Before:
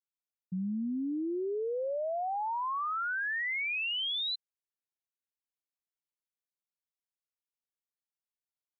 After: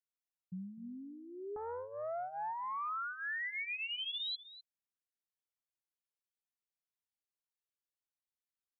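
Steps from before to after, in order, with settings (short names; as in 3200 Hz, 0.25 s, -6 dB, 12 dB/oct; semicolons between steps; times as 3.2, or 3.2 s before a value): flange 0.59 Hz, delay 0.4 ms, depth 2.1 ms, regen -22%; echo 0.252 s -15.5 dB; 1.56–2.89 Doppler distortion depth 0.59 ms; gain -3.5 dB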